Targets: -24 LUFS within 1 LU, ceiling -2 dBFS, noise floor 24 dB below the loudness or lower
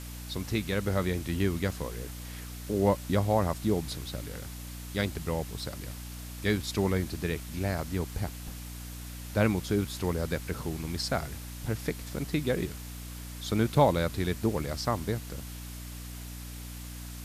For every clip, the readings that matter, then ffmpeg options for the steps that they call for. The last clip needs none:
hum 60 Hz; harmonics up to 300 Hz; hum level -39 dBFS; noise floor -41 dBFS; noise floor target -56 dBFS; loudness -32.0 LUFS; peak -10.0 dBFS; loudness target -24.0 LUFS
-> -af "bandreject=f=60:t=h:w=6,bandreject=f=120:t=h:w=6,bandreject=f=180:t=h:w=6,bandreject=f=240:t=h:w=6,bandreject=f=300:t=h:w=6"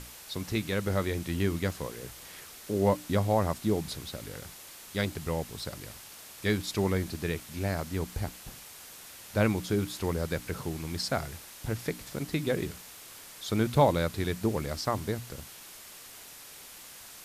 hum none; noise floor -48 dBFS; noise floor target -56 dBFS
-> -af "afftdn=nr=8:nf=-48"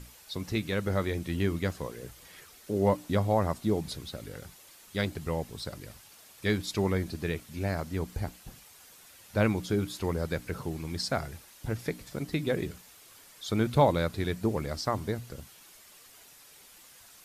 noise floor -55 dBFS; noise floor target -56 dBFS
-> -af "afftdn=nr=6:nf=-55"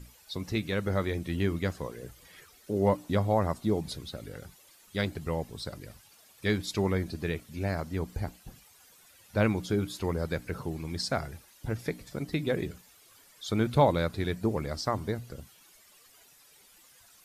noise floor -59 dBFS; loudness -31.5 LUFS; peak -11.0 dBFS; loudness target -24.0 LUFS
-> -af "volume=7.5dB"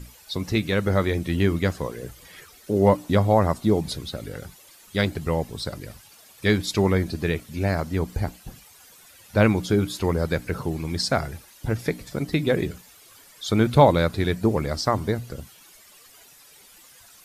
loudness -24.0 LUFS; peak -3.5 dBFS; noise floor -51 dBFS

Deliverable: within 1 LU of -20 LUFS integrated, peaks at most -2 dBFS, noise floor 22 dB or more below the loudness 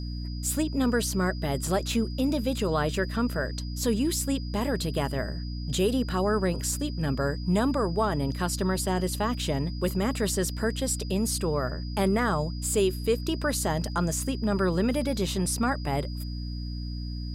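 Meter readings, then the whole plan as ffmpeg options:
hum 60 Hz; harmonics up to 300 Hz; hum level -31 dBFS; steady tone 4900 Hz; tone level -45 dBFS; loudness -28.0 LUFS; peak -13.0 dBFS; loudness target -20.0 LUFS
-> -af "bandreject=f=60:t=h:w=4,bandreject=f=120:t=h:w=4,bandreject=f=180:t=h:w=4,bandreject=f=240:t=h:w=4,bandreject=f=300:t=h:w=4"
-af "bandreject=f=4.9k:w=30"
-af "volume=8dB"

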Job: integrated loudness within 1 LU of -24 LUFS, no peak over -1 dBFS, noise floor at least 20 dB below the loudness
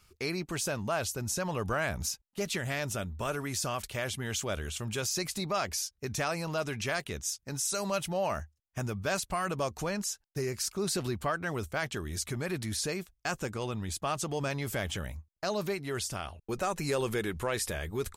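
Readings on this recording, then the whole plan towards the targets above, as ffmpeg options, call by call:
loudness -33.5 LUFS; peak -18.5 dBFS; loudness target -24.0 LUFS
-> -af "volume=9.5dB"

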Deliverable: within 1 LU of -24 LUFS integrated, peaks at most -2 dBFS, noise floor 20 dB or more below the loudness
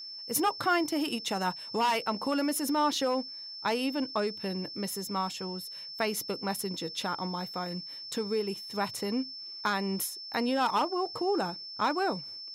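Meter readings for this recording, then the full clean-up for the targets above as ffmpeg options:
steady tone 5300 Hz; tone level -40 dBFS; loudness -31.0 LUFS; peak -15.5 dBFS; loudness target -24.0 LUFS
-> -af "bandreject=f=5.3k:w=30"
-af "volume=7dB"

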